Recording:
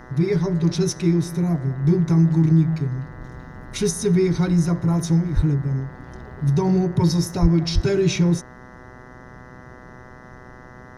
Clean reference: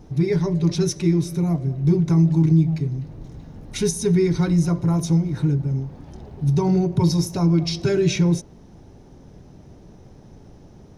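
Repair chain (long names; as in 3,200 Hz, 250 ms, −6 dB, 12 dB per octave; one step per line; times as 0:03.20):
hum removal 125.2 Hz, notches 16
high-pass at the plosives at 0:05.35/0:07.41/0:07.74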